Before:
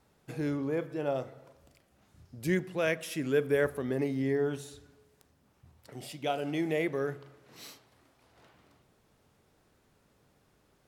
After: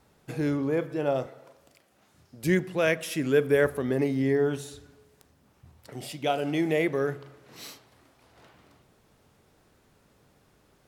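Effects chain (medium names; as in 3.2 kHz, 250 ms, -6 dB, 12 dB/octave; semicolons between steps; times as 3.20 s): 1.26–2.44 s: high-pass 310 Hz 6 dB/octave; trim +5 dB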